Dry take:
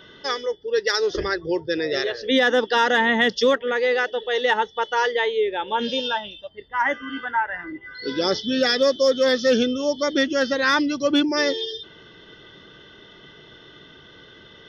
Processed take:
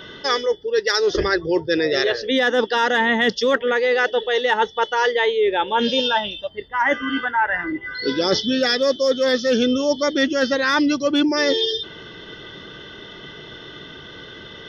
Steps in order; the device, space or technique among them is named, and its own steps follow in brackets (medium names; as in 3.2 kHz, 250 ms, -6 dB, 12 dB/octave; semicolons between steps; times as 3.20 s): compression on the reversed sound (reverse; compression, threshold -24 dBFS, peak gain reduction 10 dB; reverse); trim +8.5 dB